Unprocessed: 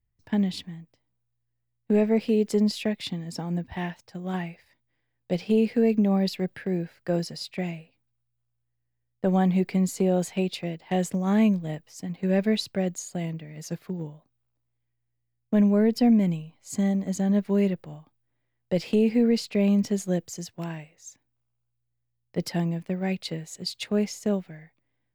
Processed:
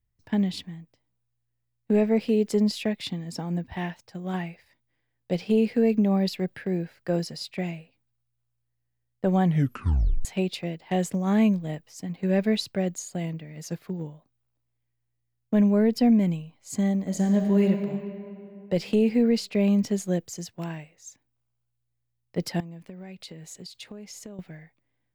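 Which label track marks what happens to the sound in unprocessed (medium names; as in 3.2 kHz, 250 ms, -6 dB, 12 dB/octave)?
9.430000	9.430000	tape stop 0.82 s
17.030000	17.680000	reverb throw, RT60 2.8 s, DRR 3 dB
22.600000	24.390000	compression 16:1, threshold -37 dBFS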